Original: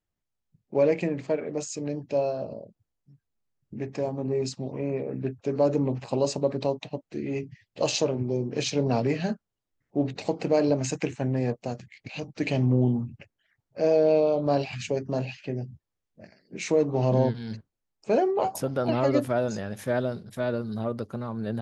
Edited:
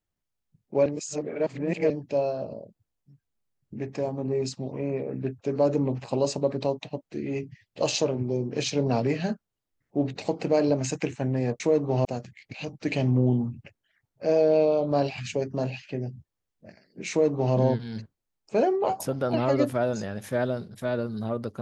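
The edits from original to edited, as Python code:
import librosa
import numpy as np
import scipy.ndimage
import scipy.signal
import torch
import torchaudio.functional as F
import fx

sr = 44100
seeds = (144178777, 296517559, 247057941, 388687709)

y = fx.edit(x, sr, fx.reverse_span(start_s=0.86, length_s=1.04),
    fx.duplicate(start_s=16.65, length_s=0.45, to_s=11.6), tone=tone)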